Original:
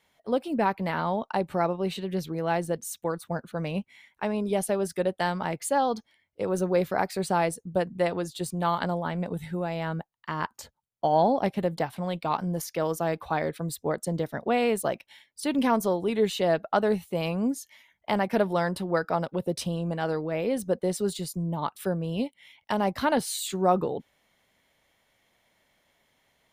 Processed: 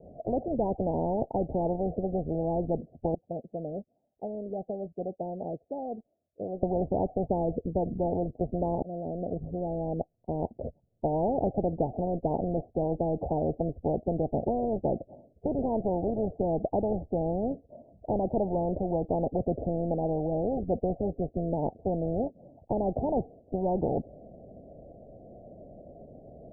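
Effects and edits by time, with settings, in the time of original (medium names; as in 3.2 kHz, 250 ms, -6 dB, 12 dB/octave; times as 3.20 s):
3.14–6.63 s: pre-emphasis filter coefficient 0.97
8.82–11.47 s: fade in
whole clip: steep low-pass 710 Hz 96 dB/octave; spectrum-flattening compressor 4:1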